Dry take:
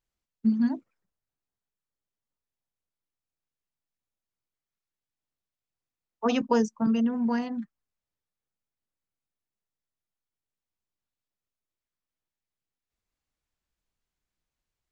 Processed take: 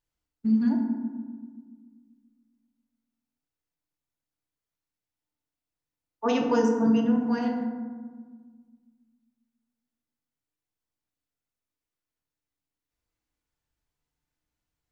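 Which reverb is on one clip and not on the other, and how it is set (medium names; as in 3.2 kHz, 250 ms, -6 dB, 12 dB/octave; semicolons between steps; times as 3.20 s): FDN reverb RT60 1.5 s, low-frequency decay 1.55×, high-frequency decay 0.4×, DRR 0 dB; trim -2 dB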